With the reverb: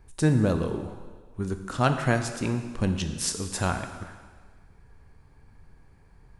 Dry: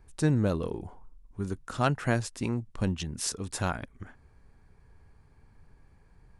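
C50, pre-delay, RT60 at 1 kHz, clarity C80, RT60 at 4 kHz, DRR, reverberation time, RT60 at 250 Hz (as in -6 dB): 8.0 dB, 13 ms, 1.6 s, 9.5 dB, 1.5 s, 6.5 dB, 1.5 s, 1.4 s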